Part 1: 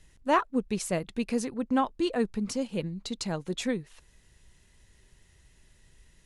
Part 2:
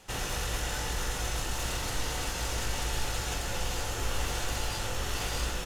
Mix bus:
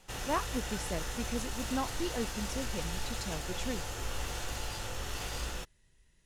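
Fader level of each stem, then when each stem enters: -8.5 dB, -5.5 dB; 0.00 s, 0.00 s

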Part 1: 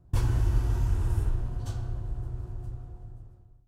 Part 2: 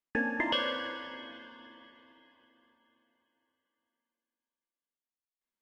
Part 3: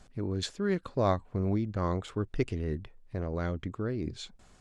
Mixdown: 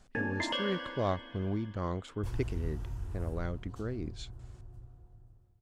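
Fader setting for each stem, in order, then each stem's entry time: -12.5 dB, -4.0 dB, -4.5 dB; 2.10 s, 0.00 s, 0.00 s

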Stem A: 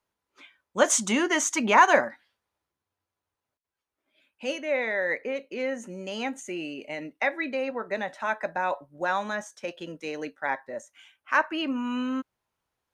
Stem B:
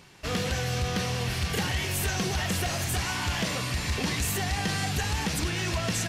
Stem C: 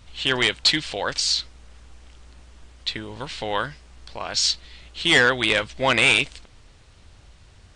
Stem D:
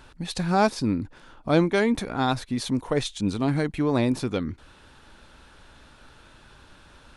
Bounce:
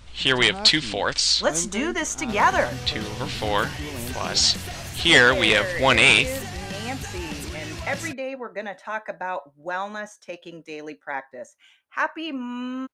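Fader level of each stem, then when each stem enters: -1.5 dB, -5.5 dB, +2.0 dB, -13.5 dB; 0.65 s, 2.05 s, 0.00 s, 0.00 s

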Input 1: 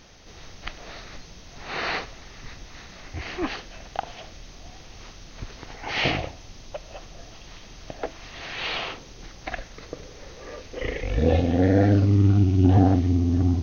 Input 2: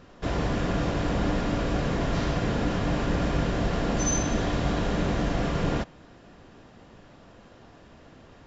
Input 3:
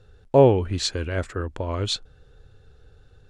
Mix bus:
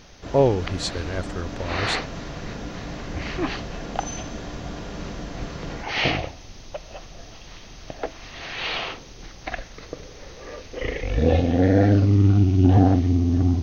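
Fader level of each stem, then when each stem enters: +1.5 dB, -8.0 dB, -3.0 dB; 0.00 s, 0.00 s, 0.00 s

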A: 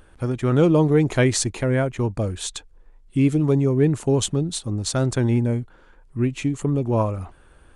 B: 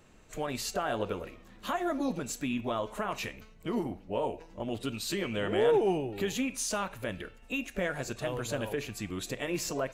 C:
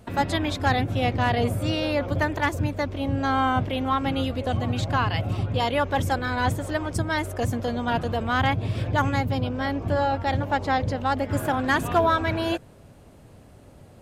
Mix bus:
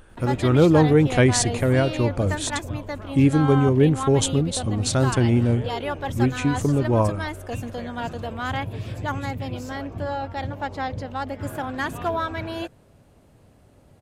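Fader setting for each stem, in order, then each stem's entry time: +1.0 dB, -10.5 dB, -5.0 dB; 0.00 s, 0.00 s, 0.10 s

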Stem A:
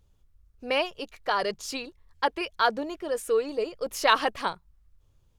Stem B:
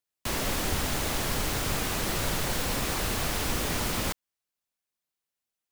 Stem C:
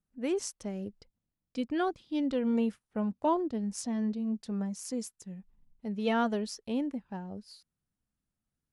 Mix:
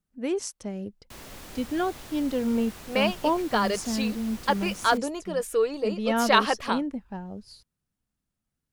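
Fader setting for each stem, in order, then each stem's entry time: +1.0 dB, -14.5 dB, +3.0 dB; 2.25 s, 0.85 s, 0.00 s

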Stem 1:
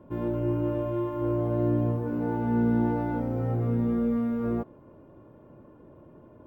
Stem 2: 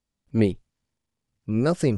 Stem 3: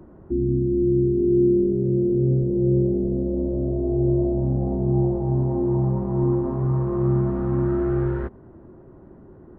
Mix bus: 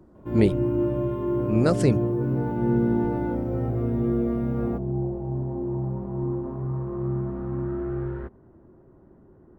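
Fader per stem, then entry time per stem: -0.5 dB, +0.5 dB, -7.0 dB; 0.15 s, 0.00 s, 0.00 s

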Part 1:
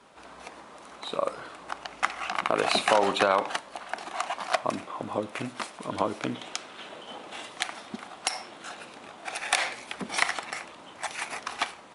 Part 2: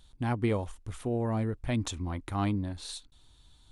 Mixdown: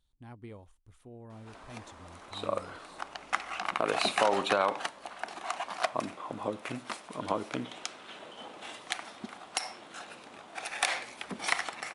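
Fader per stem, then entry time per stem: -4.0 dB, -18.5 dB; 1.30 s, 0.00 s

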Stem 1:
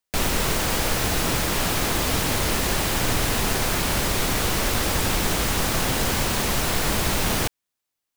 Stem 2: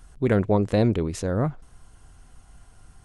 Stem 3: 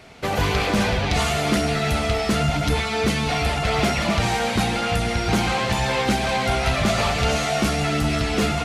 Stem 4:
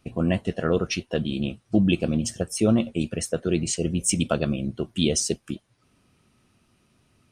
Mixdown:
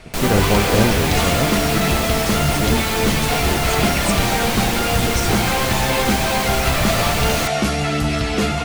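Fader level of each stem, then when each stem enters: 0.0 dB, +2.0 dB, +2.0 dB, -4.5 dB; 0.00 s, 0.00 s, 0.00 s, 0.00 s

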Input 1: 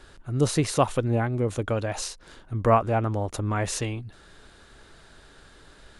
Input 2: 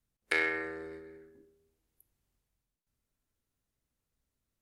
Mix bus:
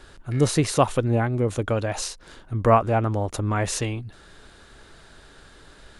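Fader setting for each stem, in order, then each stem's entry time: +2.5 dB, -16.5 dB; 0.00 s, 0.00 s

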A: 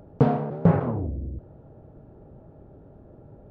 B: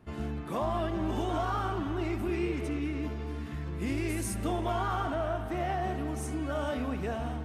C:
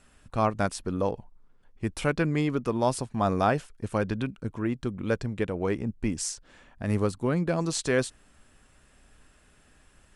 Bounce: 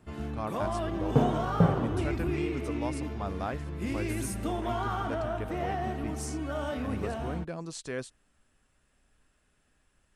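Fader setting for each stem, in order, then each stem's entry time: -4.5 dB, -1.0 dB, -11.0 dB; 0.95 s, 0.00 s, 0.00 s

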